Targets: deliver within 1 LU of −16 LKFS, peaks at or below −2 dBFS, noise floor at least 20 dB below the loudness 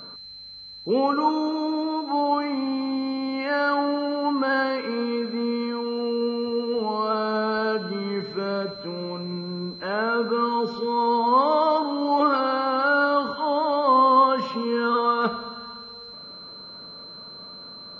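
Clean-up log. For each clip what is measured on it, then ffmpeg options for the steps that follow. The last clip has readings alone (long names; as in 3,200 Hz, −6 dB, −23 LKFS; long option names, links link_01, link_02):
interfering tone 4,100 Hz; level of the tone −39 dBFS; integrated loudness −23.5 LKFS; sample peak −7.0 dBFS; target loudness −16.0 LKFS
→ -af "bandreject=frequency=4100:width=30"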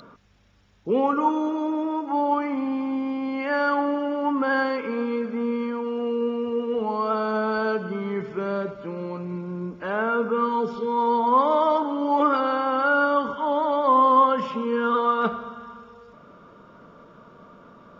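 interfering tone none found; integrated loudness −23.5 LKFS; sample peak −7.5 dBFS; target loudness −16.0 LKFS
→ -af "volume=7.5dB,alimiter=limit=-2dB:level=0:latency=1"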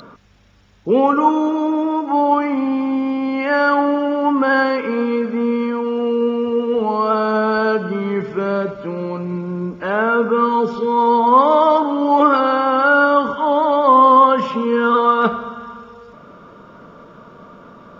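integrated loudness −16.5 LKFS; sample peak −2.0 dBFS; background noise floor −42 dBFS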